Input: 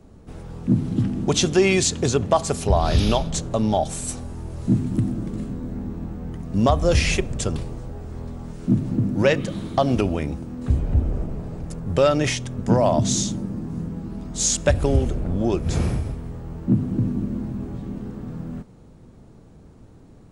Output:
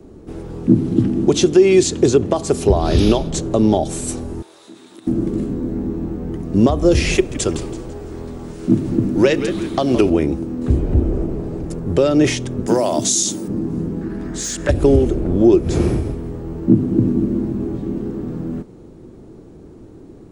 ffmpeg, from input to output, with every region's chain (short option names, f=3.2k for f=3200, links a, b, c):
-filter_complex "[0:a]asettb=1/sr,asplit=3[a][b][c];[a]atrim=end=4.424[d];[b]atrim=start=4.42:end=5.07,asetpts=PTS-STARTPTS,afade=t=in:d=0.004:c=qsin,afade=t=out:st=0.646:d=0.004:c=qsin,highpass=1k,equalizer=f=3.7k:t=o:w=0.26:g=13.5,acompressor=threshold=-48dB:ratio=2.5:attack=3.2:release=140:knee=1:detection=peak[e];[c]atrim=start=5.066[f];[d][e]acrossfade=d=0.004:c1=hsin:c2=qsin[g];[g][f]acrossfade=d=0.004:c1=qsin:c2=hsin,asettb=1/sr,asplit=3[h][i][j];[h]atrim=end=7.154[k];[i]atrim=start=7.15:end=10.1,asetpts=PTS-STARTPTS,afade=t=in:d=0.004:c=qsin,afade=t=out:st=2.946:d=0.004:c=qsin,tiltshelf=f=800:g=-4,asplit=5[l][m][n][o][p];[m]adelay=166,afreqshift=-110,volume=-13.5dB[q];[n]adelay=332,afreqshift=-220,volume=-21.7dB[r];[o]adelay=498,afreqshift=-330,volume=-29.9dB[s];[p]adelay=664,afreqshift=-440,volume=-38dB[t];[l][q][r][s][t]amix=inputs=5:normalize=0,atrim=end_sample=130095[u];[j]atrim=start=10.096[v];[k][u]acrossfade=d=0.004:c1=hsin:c2=qsin[w];[w][v]acrossfade=d=0.004:c1=qsin:c2=hsin,asettb=1/sr,asplit=3[x][y][z];[x]atrim=end=12.674[aa];[y]atrim=start=12.67:end=13.48,asetpts=PTS-STARTPTS,afade=t=in:d=0.004:c=qsin,afade=t=out:st=0.806:d=0.004:c=qsin,aemphasis=mode=production:type=riaa,acompressor=threshold=-17dB:ratio=4:attack=3.2:release=140:knee=1:detection=peak[ab];[z]atrim=start=13.476[ac];[aa][ab]acrossfade=d=0.004:c1=hsin:c2=qsin[ad];[ad][ac]acrossfade=d=0.004:c1=qsin:c2=hsin,asettb=1/sr,asplit=3[ae][af][ag];[ae]atrim=end=14.014[ah];[af]atrim=start=14.01:end=14.69,asetpts=PTS-STARTPTS,afade=t=in:d=0.004:c=qsin,afade=t=out:st=0.676:d=0.004:c=qsin,asoftclip=type=hard:threshold=-15dB,equalizer=f=1.7k:t=o:w=0.61:g=15,acompressor=threshold=-28dB:ratio=2.5:attack=3.2:release=140:knee=1:detection=peak[ai];[ag]atrim=start=14.686[aj];[ah][ai]acrossfade=d=0.004:c1=hsin:c2=qsin[ak];[ak][aj]acrossfade=d=0.004:c1=qsin:c2=hsin,equalizer=f=350:t=o:w=0.78:g=13,alimiter=limit=-5dB:level=0:latency=1:release=398,acrossover=split=470|3000[al][am][an];[am]acompressor=threshold=-21dB:ratio=6[ao];[al][ao][an]amix=inputs=3:normalize=0,volume=3dB"